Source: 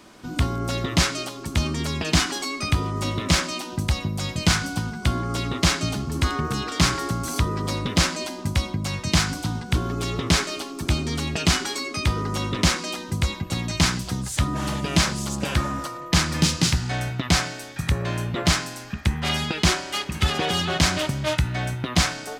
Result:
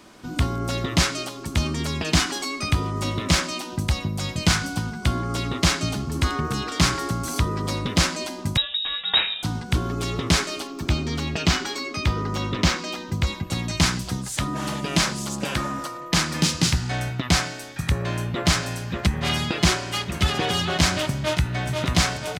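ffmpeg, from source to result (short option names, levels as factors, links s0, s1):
-filter_complex "[0:a]asettb=1/sr,asplit=3[s0][s1][s2];[s0]atrim=end=8.574[s3];[s1]atrim=start=8.57:end=9.43,asetpts=PTS-STARTPTS,afade=t=in:d=0.004:c=qsin,afade=t=out:st=0.856:d=0.004:c=qsin,lowpass=f=3300:t=q:w=0.5098,lowpass=f=3300:t=q:w=0.6013,lowpass=f=3300:t=q:w=0.9,lowpass=f=3300:t=q:w=2.563,afreqshift=-3900[s4];[s2]atrim=start=9.426[s5];[s3][s4]acrossfade=d=0.004:c1=hsin:c2=qsin[s6];[s6][s5]acrossfade=d=0.004:c1=qsin:c2=hsin,asettb=1/sr,asplit=3[s7][s8][s9];[s7]atrim=end=10.674[s10];[s8]atrim=start=10.67:end=13.27,asetpts=PTS-STARTPTS,afade=t=in:d=0.004:c=qsin,afade=t=out:st=2.596:d=0.004:c=qsin,equalizer=f=10000:w=1.3:g=-11.5[s11];[s9]atrim=start=13.266[s12];[s10][s11]acrossfade=d=0.004:c1=hsin:c2=qsin[s13];[s13][s12]acrossfade=d=0.004:c1=qsin:c2=hsin,asettb=1/sr,asplit=3[s14][s15][s16];[s14]atrim=end=14.174[s17];[s15]atrim=start=14.17:end=16.55,asetpts=PTS-STARTPTS,afade=t=in:d=0.004:c=qsin,afade=t=out:st=2.376:d=0.004:c=qsin,equalizer=f=75:w=1.5:g=-11.5[s18];[s16]atrim=start=16.546[s19];[s17][s18]acrossfade=d=0.004:c1=hsin:c2=qsin[s20];[s20][s19]acrossfade=d=0.004:c1=qsin:c2=hsin,asplit=2[s21][s22];[s22]afade=t=in:st=17.97:d=0.01,afade=t=out:st=18.48:d=0.01,aecho=0:1:580|1160|1740|2320|2900|3480|4060|4640|5220|5800|6380|6960:0.595662|0.47653|0.381224|0.304979|0.243983|0.195187|0.156149|0.124919|0.0999355|0.0799484|0.0639587|0.051167[s23];[s21][s23]amix=inputs=2:normalize=0,asplit=2[s24][s25];[s25]afade=t=in:st=21.17:d=0.01,afade=t=out:st=21.68:d=0.01,aecho=0:1:490|980|1470|1960|2450|2940|3430|3920|4410:0.630957|0.378574|0.227145|0.136287|0.0817721|0.0490632|0.0294379|0.0176628|0.0105977[s26];[s24][s26]amix=inputs=2:normalize=0"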